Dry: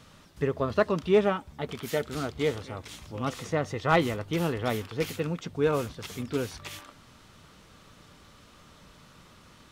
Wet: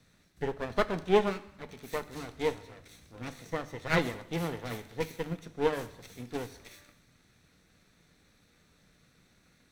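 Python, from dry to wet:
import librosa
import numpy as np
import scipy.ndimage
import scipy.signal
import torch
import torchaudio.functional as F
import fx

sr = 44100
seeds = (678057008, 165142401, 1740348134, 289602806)

y = fx.lower_of_two(x, sr, delay_ms=0.49)
y = fx.hum_notches(y, sr, base_hz=50, count=3)
y = fx.rev_gated(y, sr, seeds[0], gate_ms=330, shape='falling', drr_db=8.0)
y = fx.upward_expand(y, sr, threshold_db=-38.0, expansion=1.5)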